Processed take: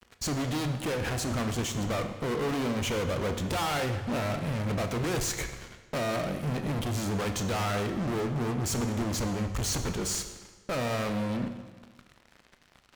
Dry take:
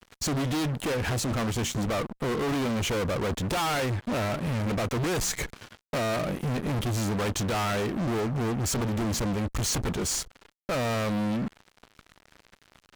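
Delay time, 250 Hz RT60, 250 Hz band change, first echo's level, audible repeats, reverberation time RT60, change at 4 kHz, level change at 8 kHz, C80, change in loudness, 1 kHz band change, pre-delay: no echo, 1.4 s, -2.5 dB, no echo, no echo, 1.3 s, -2.0 dB, -2.5 dB, 9.5 dB, -2.0 dB, -2.0 dB, 21 ms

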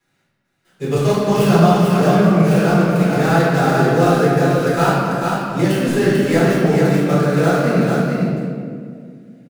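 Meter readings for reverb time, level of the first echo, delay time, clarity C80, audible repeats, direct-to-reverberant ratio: 2.1 s, -3.5 dB, 444 ms, -2.5 dB, 1, -12.5 dB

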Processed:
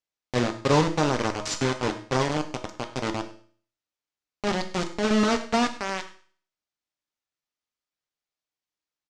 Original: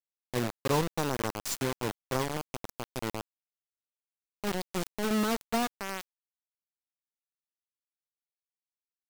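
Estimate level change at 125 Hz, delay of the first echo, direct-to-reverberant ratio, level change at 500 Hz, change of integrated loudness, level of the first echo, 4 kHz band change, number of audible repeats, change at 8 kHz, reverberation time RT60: +7.0 dB, 100 ms, 5.0 dB, +7.0 dB, +6.5 dB, -18.5 dB, +7.0 dB, 1, +3.0 dB, 0.50 s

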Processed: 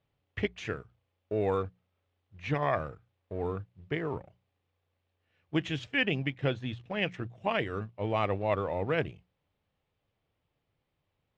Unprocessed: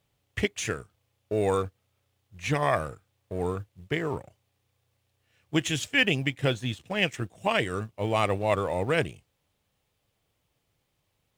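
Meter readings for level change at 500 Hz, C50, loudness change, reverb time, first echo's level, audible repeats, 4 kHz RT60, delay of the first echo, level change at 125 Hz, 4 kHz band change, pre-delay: -3.5 dB, no reverb, -4.5 dB, no reverb, no echo, no echo, no reverb, no echo, -3.5 dB, -7.5 dB, no reverb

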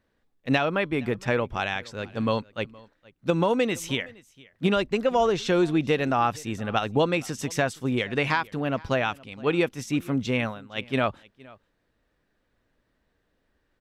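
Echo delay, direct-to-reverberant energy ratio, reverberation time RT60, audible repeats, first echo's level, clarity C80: 467 ms, no reverb, no reverb, 1, -23.5 dB, no reverb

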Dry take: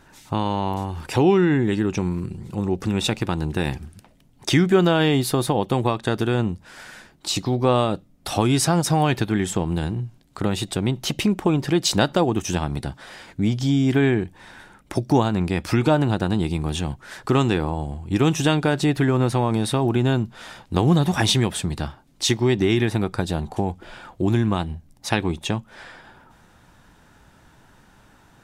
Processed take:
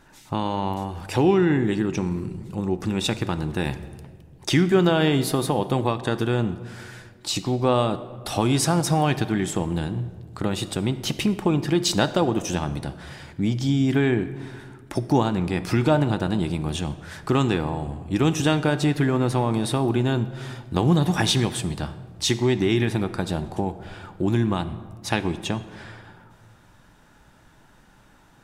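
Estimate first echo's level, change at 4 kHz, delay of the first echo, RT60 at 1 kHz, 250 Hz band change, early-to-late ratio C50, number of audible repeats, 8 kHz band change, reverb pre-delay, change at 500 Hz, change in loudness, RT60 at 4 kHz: no echo, -1.5 dB, no echo, 1.5 s, -1.5 dB, 13.5 dB, no echo, -2.0 dB, 3 ms, -1.5 dB, -1.5 dB, 1.0 s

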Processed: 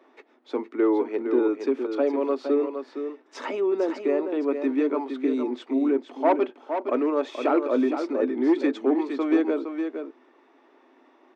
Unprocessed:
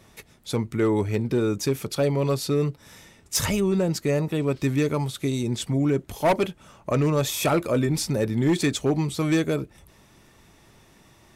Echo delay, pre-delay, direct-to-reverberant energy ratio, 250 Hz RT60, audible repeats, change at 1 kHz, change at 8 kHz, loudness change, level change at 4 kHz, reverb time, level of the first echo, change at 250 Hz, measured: 463 ms, no reverb, no reverb, no reverb, 1, +1.0 dB, under -25 dB, -1.0 dB, -13.0 dB, no reverb, -7.5 dB, +1.0 dB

